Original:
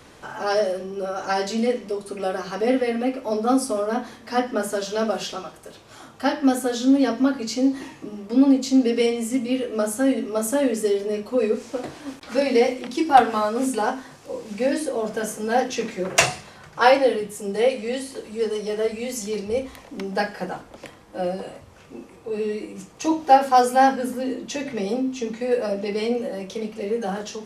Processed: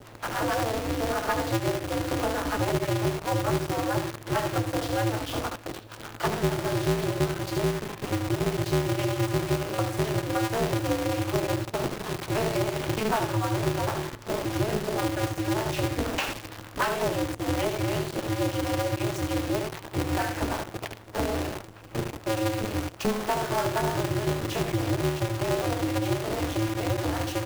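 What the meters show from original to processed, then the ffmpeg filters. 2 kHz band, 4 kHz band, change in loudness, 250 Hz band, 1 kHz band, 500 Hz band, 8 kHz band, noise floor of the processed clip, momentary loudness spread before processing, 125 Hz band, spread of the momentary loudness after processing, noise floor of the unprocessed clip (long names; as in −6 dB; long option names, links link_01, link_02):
−3.0 dB, −2.0 dB, −5.5 dB, −6.0 dB, −7.5 dB, −6.0 dB, −4.5 dB, −44 dBFS, 15 LU, +12.5 dB, 5 LU, −47 dBFS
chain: -filter_complex "[0:a]acrossover=split=1800[link_01][link_02];[link_01]alimiter=limit=-13.5dB:level=0:latency=1:release=83[link_03];[link_03][link_02]amix=inputs=2:normalize=0,equalizer=frequency=210:width_type=o:width=0.45:gain=11.5,acrossover=split=540[link_04][link_05];[link_04]aeval=exprs='val(0)*(1-1/2+1/2*cos(2*PI*6.5*n/s))':channel_layout=same[link_06];[link_05]aeval=exprs='val(0)*(1-1/2-1/2*cos(2*PI*6.5*n/s))':channel_layout=same[link_07];[link_06][link_07]amix=inputs=2:normalize=0,equalizer=frequency=2000:width_type=o:width=0.3:gain=-6,asplit=2[link_08][link_09];[link_09]aecho=0:1:12|73:0.237|0.447[link_10];[link_08][link_10]amix=inputs=2:normalize=0,acompressor=threshold=-33dB:ratio=5,highpass=150,lowpass=3000,acrusher=bits=8:dc=4:mix=0:aa=0.000001,aeval=exprs='val(0)*sgn(sin(2*PI*110*n/s))':channel_layout=same,volume=8.5dB"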